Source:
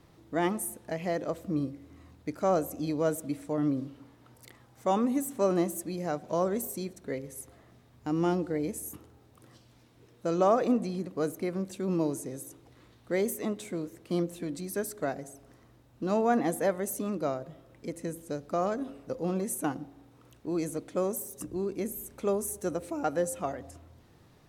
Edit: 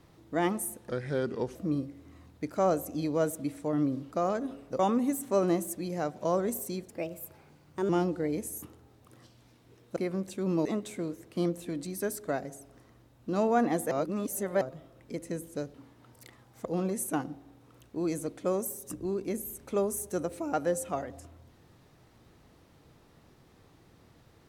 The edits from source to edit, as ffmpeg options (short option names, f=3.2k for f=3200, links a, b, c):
-filter_complex "[0:a]asplit=13[a][b][c][d][e][f][g][h][i][j][k][l][m];[a]atrim=end=0.894[n];[b]atrim=start=0.89:end=1.4,asetpts=PTS-STARTPTS,asetrate=33957,aresample=44100,atrim=end_sample=29209,asetpts=PTS-STARTPTS[o];[c]atrim=start=1.396:end=3.962[p];[d]atrim=start=18.478:end=19.162[q];[e]atrim=start=4.868:end=6.974[r];[f]atrim=start=6.97:end=8.2,asetpts=PTS-STARTPTS,asetrate=54243,aresample=44100[s];[g]atrim=start=8.196:end=10.272[t];[h]atrim=start=11.378:end=12.072[u];[i]atrim=start=13.388:end=16.652[v];[j]atrim=start=16.648:end=17.352,asetpts=PTS-STARTPTS,areverse[w];[k]atrim=start=17.348:end=18.482[x];[l]atrim=start=3.958:end=4.872[y];[m]atrim=start=19.158[z];[n][o]acrossfade=d=0.004:c1=hsin:c2=hsin[aa];[aa][p]acrossfade=d=0.004:c1=hsin:c2=hsin[ab];[ab][q]acrossfade=d=0.004:c1=hsin:c2=hsin[ac];[ac][r]acrossfade=d=0.004:c1=hsin:c2=hsin[ad];[ad][s]acrossfade=d=0.004:c1=hsin:c2=hsin[ae];[ae][t]acrossfade=d=0.004:c1=hsin:c2=hsin[af];[af][u]acrossfade=d=0.004:c1=hsin:c2=hsin[ag];[ag][v]acrossfade=d=0.004:c1=hsin:c2=hsin[ah];[ah][w]acrossfade=d=0.004:c1=hsin:c2=hsin[ai];[ai][x]acrossfade=d=0.004:c1=hsin:c2=hsin[aj];[aj][y]acrossfade=d=0.004:c1=hsin:c2=hsin[ak];[ak][z]acrossfade=d=0.004:c1=hsin:c2=hsin"